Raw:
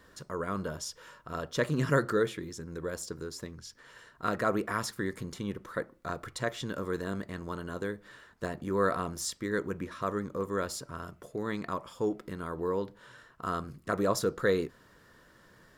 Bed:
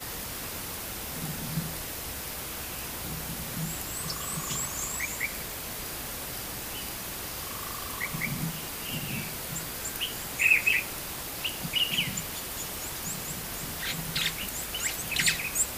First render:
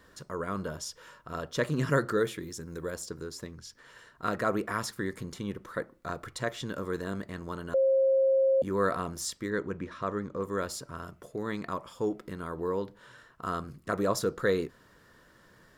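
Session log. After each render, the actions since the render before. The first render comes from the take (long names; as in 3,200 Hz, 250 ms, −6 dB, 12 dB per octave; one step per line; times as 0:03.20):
0:02.17–0:02.90: high-shelf EQ 11,000 Hz → 6,700 Hz +10 dB
0:07.74–0:08.62: beep over 535 Hz −20.5 dBFS
0:09.50–0:10.42: high-frequency loss of the air 70 metres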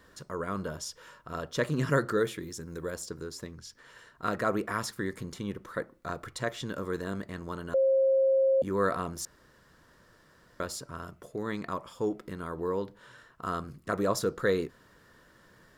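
0:09.25–0:10.60: fill with room tone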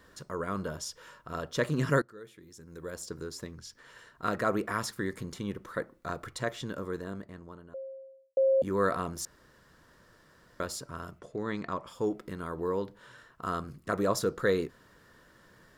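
0:02.02–0:03.15: fade in quadratic, from −22.5 dB
0:06.24–0:08.37: fade out and dull
0:11.19–0:11.87: Bessel low-pass filter 6,200 Hz, order 4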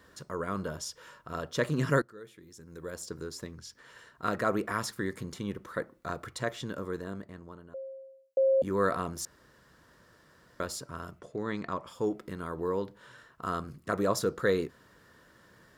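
high-pass filter 43 Hz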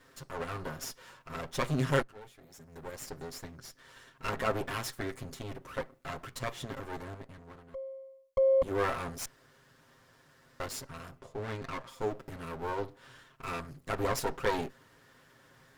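lower of the sound and its delayed copy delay 7.5 ms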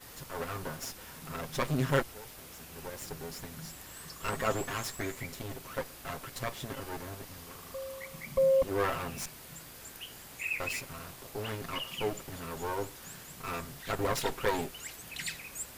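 mix in bed −13 dB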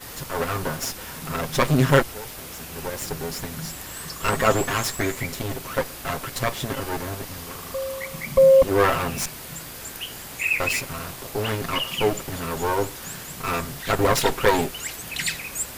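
level +11.5 dB
brickwall limiter −2 dBFS, peak gain reduction 1.5 dB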